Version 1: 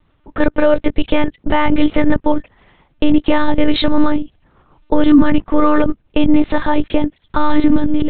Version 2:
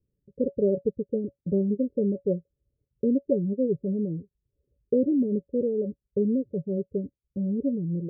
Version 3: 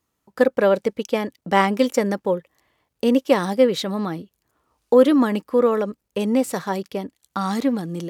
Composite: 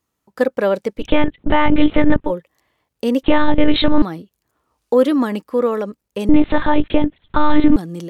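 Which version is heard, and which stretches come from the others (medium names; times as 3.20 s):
3
1.03–2.27 s: from 1, crossfade 0.10 s
3.23–4.02 s: from 1
6.29–7.76 s: from 1
not used: 2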